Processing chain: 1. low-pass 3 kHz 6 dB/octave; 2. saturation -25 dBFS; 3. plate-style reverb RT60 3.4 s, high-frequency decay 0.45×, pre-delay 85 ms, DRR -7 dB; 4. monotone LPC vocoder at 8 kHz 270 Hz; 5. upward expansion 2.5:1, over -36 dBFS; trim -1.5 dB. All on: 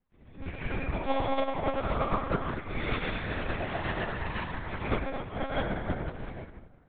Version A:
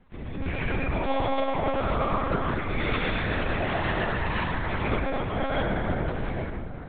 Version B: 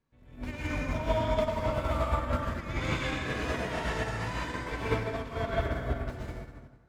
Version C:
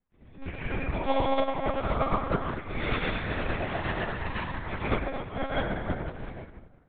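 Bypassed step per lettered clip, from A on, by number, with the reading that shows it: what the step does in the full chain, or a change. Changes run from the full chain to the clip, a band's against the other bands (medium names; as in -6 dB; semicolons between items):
5, crest factor change -4.0 dB; 4, 1 kHz band -2.0 dB; 2, distortion -15 dB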